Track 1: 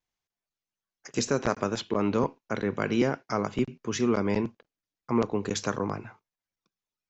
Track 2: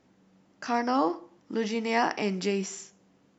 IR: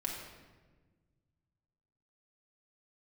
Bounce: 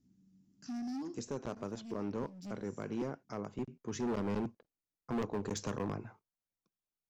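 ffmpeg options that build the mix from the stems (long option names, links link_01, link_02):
-filter_complex "[0:a]equalizer=frequency=2700:width_type=o:width=2.5:gain=-9.5,volume=-3.5dB,afade=type=in:start_time=0.9:duration=0.42:silence=0.298538,afade=type=in:start_time=3.59:duration=0.68:silence=0.446684,asplit=2[link_01][link_02];[1:a]firequalizer=gain_entry='entry(230,0);entry(520,-28);entry(5500,-7)':delay=0.05:min_phase=1,volume=34dB,asoftclip=hard,volume=-34dB,volume=-3dB[link_03];[link_02]apad=whole_len=153898[link_04];[link_03][link_04]sidechaincompress=threshold=-51dB:ratio=12:attack=29:release=253[link_05];[link_01][link_05]amix=inputs=2:normalize=0,asoftclip=type=hard:threshold=-31dB"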